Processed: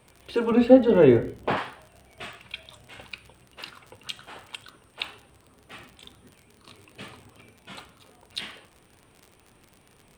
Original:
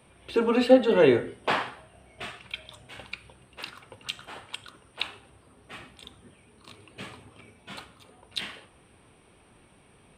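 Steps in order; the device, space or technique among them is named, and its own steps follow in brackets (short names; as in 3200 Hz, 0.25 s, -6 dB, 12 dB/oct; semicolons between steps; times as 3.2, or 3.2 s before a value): 0.52–1.57 tilt -3 dB/oct; vinyl LP (wow and flutter; crackle 51/s -37 dBFS; pink noise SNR 44 dB); gain -1 dB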